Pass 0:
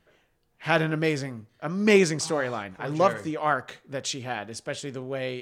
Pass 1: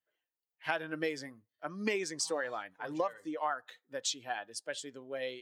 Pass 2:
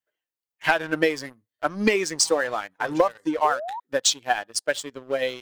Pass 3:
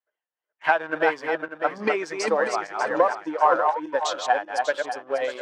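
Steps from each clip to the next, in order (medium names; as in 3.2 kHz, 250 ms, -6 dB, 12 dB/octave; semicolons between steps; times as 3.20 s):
expander on every frequency bin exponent 1.5; high-pass 410 Hz 12 dB/octave; compression 10:1, threshold -31 dBFS, peak gain reduction 15 dB; trim +1.5 dB
transient shaper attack +6 dB, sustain 0 dB; waveshaping leveller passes 2; painted sound rise, 3.44–3.80 s, 400–1000 Hz -35 dBFS; trim +3 dB
backward echo that repeats 297 ms, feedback 49%, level -4 dB; band-pass filter 900 Hz, Q 1; trim +3 dB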